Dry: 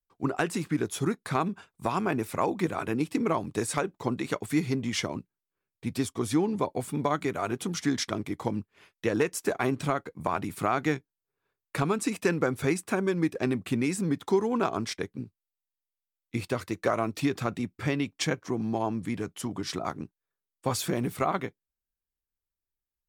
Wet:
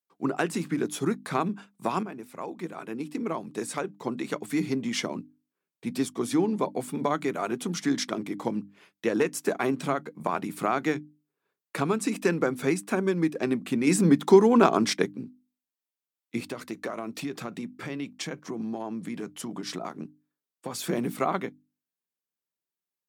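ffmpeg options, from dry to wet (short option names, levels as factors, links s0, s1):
-filter_complex "[0:a]asettb=1/sr,asplit=3[s0][s1][s2];[s0]atrim=end=16.424[s3];[s1]atrim=start=16.42:end=20.84,asetpts=PTS-STARTPTS,afade=t=in:d=0.004:c=qsin,afade=t=out:st=4.416:d=0.004:c=qsin,acompressor=threshold=0.0316:ratio=5:attack=3.2:release=140:knee=1:detection=peak[s4];[s2]atrim=start=20.836[s5];[s3][s4]acrossfade=d=0.004:c1=hsin:c2=qsin[s6];[s6][s5]acrossfade=d=0.004:c1=qsin:c2=hsin,asplit=4[s7][s8][s9][s10];[s7]atrim=end=2.03,asetpts=PTS-STARTPTS,afade=t=out:st=2.026:d=0.004:c=hsin:silence=0.199526[s11];[s8]atrim=start=2.03:end=13.872,asetpts=PTS-STARTPTS,afade=t=in:d=2.94:silence=0.199526[s12];[s9]atrim=start=13.868:end=15.122,asetpts=PTS-STARTPTS,volume=2.24[s13];[s10]atrim=start=15.118[s14];[s11][s12]concat=n=2:v=0:a=1[s15];[s15][s13]acrossfade=d=0.004:c1=hsin:c2=hsin[s16];[s16][s14]acrossfade=d=0.004:c1=hsin:c2=hsin,highpass=f=170:w=0.5412,highpass=f=170:w=1.3066,lowshelf=f=230:g=6,bandreject=f=50:t=h:w=6,bandreject=f=100:t=h:w=6,bandreject=f=150:t=h:w=6,bandreject=f=200:t=h:w=6,bandreject=f=250:t=h:w=6,bandreject=f=300:t=h:w=6"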